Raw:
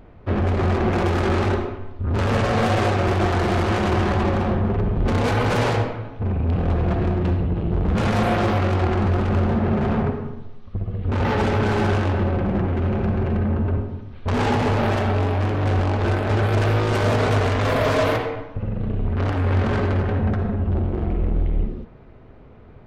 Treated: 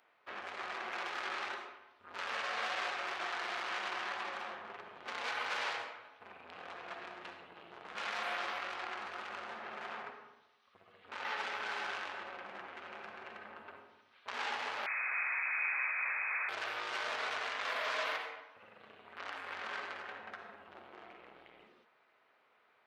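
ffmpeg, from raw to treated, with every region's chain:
ffmpeg -i in.wav -filter_complex "[0:a]asettb=1/sr,asplit=3[link_01][link_02][link_03];[link_01]atrim=end=14.864[link_04];[link_02]atrim=start=14.86:end=16.49,asetpts=PTS-STARTPTS,afade=type=in:duration=0.004:curve=qsin,afade=type=out:start_time=1.626:duration=0.004:curve=qsin,equalizer=frequency=120:width_type=o:width=0.91:gain=-6,aeval=exprs='(mod(10.6*val(0)+1,2)-1)/10.6':channel_layout=same,lowpass=frequency=2200:width_type=q:width=0.5098,lowpass=frequency=2200:width_type=q:width=0.6013,lowpass=frequency=2200:width_type=q:width=0.9,lowpass=frequency=2200:width_type=q:width=2.563,afreqshift=-2600[link_05];[link_03]atrim=start=16.486[link_06];[link_04][link_05]acrossfade=duration=0.004:curve1=hsin:curve2=qsin[link_07];[link_07][link_06]acrossfade=duration=0.004:curve1=qsin:curve2=hsin,acrossover=split=6000[link_08][link_09];[link_09]acompressor=threshold=-57dB:ratio=4:attack=1:release=60[link_10];[link_08][link_10]amix=inputs=2:normalize=0,highpass=1300,volume=-8dB" out.wav

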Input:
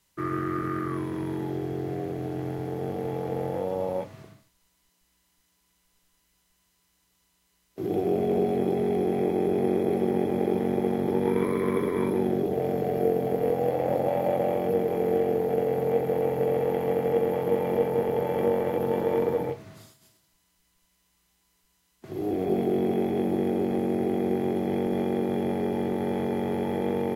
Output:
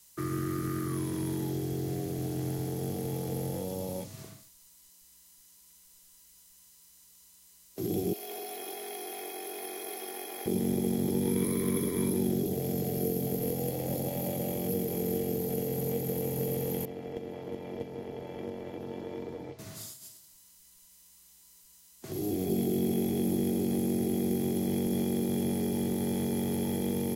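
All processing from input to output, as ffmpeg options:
ffmpeg -i in.wav -filter_complex "[0:a]asettb=1/sr,asplit=3[link_01][link_02][link_03];[link_01]atrim=end=8.134[link_04];[link_02]atrim=start=8.13:end=10.46,asetpts=PTS-STARTPTS,afade=type=in:duration=0.004:curve=qsin,afade=type=out:start_time=2.326:duration=0.004:curve=qsin,highpass=1100,equalizer=frequency=7900:width_type=o:width=0.48:gain=-8,aecho=1:1:2.8:0.61,atrim=end_sample=102753[link_05];[link_03]atrim=start=10.456[link_06];[link_04][link_05]acrossfade=duration=0.004:curve1=hsin:curve2=qsin[link_07];[link_07][link_06]acrossfade=duration=0.004:curve1=qsin:curve2=hsin,asettb=1/sr,asplit=3[link_08][link_09][link_10];[link_08]atrim=end=16.854[link_11];[link_09]atrim=start=16.85:end=19.59,asetpts=PTS-STARTPTS,afade=type=in:duration=0.004:curve=qsin,afade=type=out:start_time=2.736:duration=0.004:curve=qsin,lowpass=4000,agate=range=-9dB:threshold=-21dB:ratio=16:release=100:detection=peak,aecho=1:1:3:0.37,atrim=end_sample=120834[link_12];[link_10]atrim=start=19.586[link_13];[link_11][link_12]acrossfade=duration=0.004:curve1=hsin:curve2=qsin[link_14];[link_14][link_13]acrossfade=duration=0.004:curve1=qsin:curve2=hsin,bass=frequency=250:gain=1,treble=frequency=4000:gain=15,acrossover=split=320|3000[link_15][link_16][link_17];[link_16]acompressor=threshold=-42dB:ratio=4[link_18];[link_15][link_18][link_17]amix=inputs=3:normalize=0" out.wav

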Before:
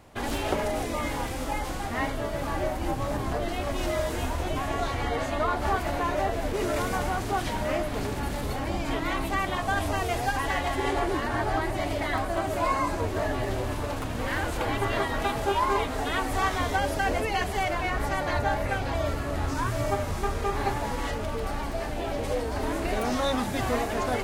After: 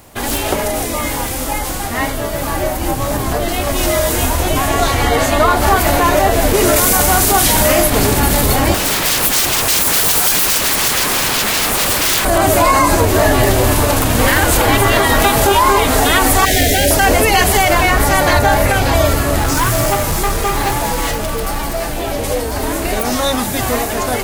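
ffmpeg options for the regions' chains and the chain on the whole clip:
ffmpeg -i in.wav -filter_complex "[0:a]asettb=1/sr,asplit=3[link_01][link_02][link_03];[link_01]atrim=end=6.764[link_04];[link_02]atrim=start=6.76:end=7.9,asetpts=PTS-STARTPTS,afade=type=in:duration=0.004:curve=qsin,afade=type=out:start_time=1.136:duration=0.004:curve=qsin,highshelf=frequency=4300:gain=7.5,asplit=2[link_05][link_06];[link_06]adelay=41,volume=-11dB[link_07];[link_05][link_07]amix=inputs=2:normalize=0,atrim=end_sample=50274[link_08];[link_03]atrim=start=7.896[link_09];[link_04][link_08]acrossfade=duration=0.004:curve1=hsin:curve2=qsin[link_10];[link_10][link_09]acrossfade=duration=0.004:curve1=qsin:curve2=hsin,asettb=1/sr,asplit=3[link_11][link_12][link_13];[link_11]atrim=end=8.744[link_14];[link_12]atrim=start=8.74:end=12.25,asetpts=PTS-STARTPTS,afade=type=in:duration=0.004:curve=qsin,afade=type=out:start_time=3.506:duration=0.004:curve=qsin,bass=frequency=250:gain=0,treble=frequency=4000:gain=3,aeval=exprs='0.0266*(abs(mod(val(0)/0.0266+3,4)-2)-1)':channel_layout=same[link_15];[link_13]atrim=start=12.246[link_16];[link_14][link_15]acrossfade=duration=0.004:curve1=hsin:curve2=qsin[link_17];[link_17][link_16]acrossfade=duration=0.004:curve1=qsin:curve2=hsin,asettb=1/sr,asplit=3[link_18][link_19][link_20];[link_18]atrim=end=16.454[link_21];[link_19]atrim=start=16.45:end=16.91,asetpts=PTS-STARTPTS,afade=type=in:duration=0.004:curve=qsin,afade=type=out:start_time=0.456:duration=0.004:curve=qsin,volume=25dB,asoftclip=hard,volume=-25dB,asuperstop=centerf=1100:order=8:qfactor=1.2[link_22];[link_20]atrim=start=16.906[link_23];[link_21][link_22]acrossfade=duration=0.004:curve1=hsin:curve2=qsin[link_24];[link_24][link_23]acrossfade=duration=0.004:curve1=qsin:curve2=hsin,asettb=1/sr,asplit=3[link_25][link_26][link_27];[link_25]atrim=end=19.384[link_28];[link_26]atrim=start=19.38:end=22.02,asetpts=PTS-STARTPTS,afade=type=in:duration=0.004:curve=qsin,afade=type=out:start_time=2.636:duration=0.004:curve=qsin,aecho=1:1:6:0.33,atrim=end_sample=116424,asoftclip=type=hard:threshold=-25dB[link_29];[link_27]atrim=start=22.016[link_30];[link_28][link_29]acrossfade=duration=0.004:curve1=hsin:curve2=qsin[link_31];[link_31][link_30]acrossfade=duration=0.004:curve1=qsin:curve2=hsin,aemphasis=mode=production:type=50fm,dynaudnorm=framelen=870:gausssize=11:maxgain=9dB,alimiter=level_in=10.5dB:limit=-1dB:release=50:level=0:latency=1,volume=-1dB" out.wav

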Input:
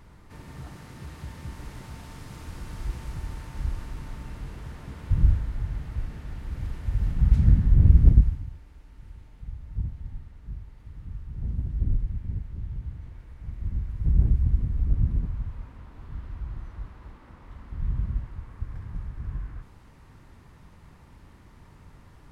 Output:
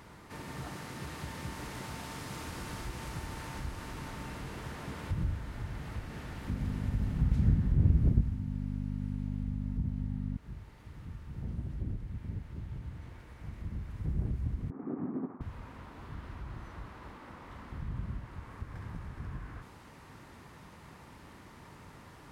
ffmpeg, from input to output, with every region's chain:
ffmpeg -i in.wav -filter_complex "[0:a]asettb=1/sr,asplit=3[link_01][link_02][link_03];[link_01]atrim=end=6.484[link_04];[link_02]atrim=start=6.48:end=10.37,asetpts=PTS-STARTPTS,afade=type=in:duration=0.004:curve=qsin,afade=type=out:start_time=3.886:duration=0.004:curve=qsin,aeval=exprs='val(0)+0.0282*(sin(2*PI*50*n/s)+sin(2*PI*2*50*n/s)/2+sin(2*PI*3*50*n/s)/3+sin(2*PI*4*50*n/s)/4+sin(2*PI*5*50*n/s)/5)':channel_layout=same,lowshelf=frequency=430:gain=6.5[link_05];[link_03]atrim=start=10.366[link_06];[link_04][link_05]acrossfade=duration=0.004:curve1=hsin:curve2=qsin[link_07];[link_07][link_06]acrossfade=duration=0.004:curve1=qsin:curve2=hsin,asettb=1/sr,asplit=3[link_08][link_09][link_10];[link_08]atrim=end=14.704[link_11];[link_09]atrim=start=14.7:end=15.41,asetpts=PTS-STARTPTS,afade=type=in:duration=0.004:curve=qsin,afade=type=out:start_time=0.706:duration=0.004:curve=qsin,agate=range=-33dB:threshold=-28dB:ratio=3:release=100:detection=peak,adynamicsmooth=sensitivity=4:basefreq=990,highpass=frequency=210:width=0.5412,highpass=frequency=210:width=1.3066,equalizer=frequency=270:width_type=q:width=4:gain=10,equalizer=frequency=390:width_type=q:width=4:gain=8,equalizer=frequency=780:width_type=q:width=4:gain=7,equalizer=frequency=1200:width_type=q:width=4:gain=7,lowpass=frequency=2100:width=0.5412,lowpass=frequency=2100:width=1.3066[link_12];[link_10]atrim=start=15.406[link_13];[link_11][link_12]acrossfade=duration=0.004:curve1=hsin:curve2=qsin[link_14];[link_14][link_13]acrossfade=duration=0.004:curve1=qsin:curve2=hsin,acompressor=threshold=-33dB:ratio=1.5,highpass=frequency=240:poles=1,volume=5dB" out.wav

